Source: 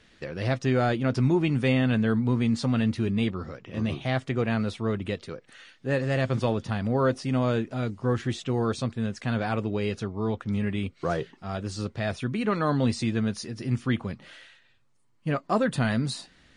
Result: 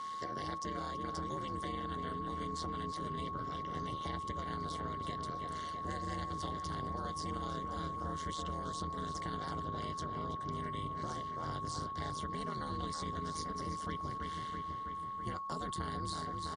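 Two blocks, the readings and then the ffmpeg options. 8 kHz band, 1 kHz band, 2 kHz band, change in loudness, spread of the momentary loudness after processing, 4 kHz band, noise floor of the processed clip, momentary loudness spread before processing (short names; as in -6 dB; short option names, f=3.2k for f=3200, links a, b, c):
-5.5 dB, -2.0 dB, -15.0 dB, -12.5 dB, 1 LU, -8.5 dB, -42 dBFS, 10 LU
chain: -filter_complex "[0:a]asplit=2[a][b];[b]adelay=327,lowpass=f=4.4k:p=1,volume=-11dB,asplit=2[c][d];[d]adelay=327,lowpass=f=4.4k:p=1,volume=0.54,asplit=2[e][f];[f]adelay=327,lowpass=f=4.4k:p=1,volume=0.54,asplit=2[g][h];[h]adelay=327,lowpass=f=4.4k:p=1,volume=0.54,asplit=2[i][j];[j]adelay=327,lowpass=f=4.4k:p=1,volume=0.54,asplit=2[k][l];[l]adelay=327,lowpass=f=4.4k:p=1,volume=0.54[m];[c][e][g][i][k][m]amix=inputs=6:normalize=0[n];[a][n]amix=inputs=2:normalize=0,acrossover=split=310|1200|3000[o][p][q][r];[o]acompressor=threshold=-31dB:ratio=4[s];[p]acompressor=threshold=-38dB:ratio=4[t];[q]acompressor=threshold=-45dB:ratio=4[u];[r]acompressor=threshold=-47dB:ratio=4[v];[s][t][u][v]amix=inputs=4:normalize=0,aeval=exprs='val(0)*sin(2*PI*78*n/s)':c=same,asuperstop=centerf=2500:order=12:qfactor=3.9,acompressor=threshold=-51dB:ratio=2,aeval=exprs='val(0)*sin(2*PI*120*n/s)':c=same,asubboost=boost=3:cutoff=140,aeval=exprs='val(0)+0.00447*sin(2*PI*1100*n/s)':c=same,highpass=110,lowpass=7.9k,aemphasis=mode=production:type=75fm,volume=7.5dB"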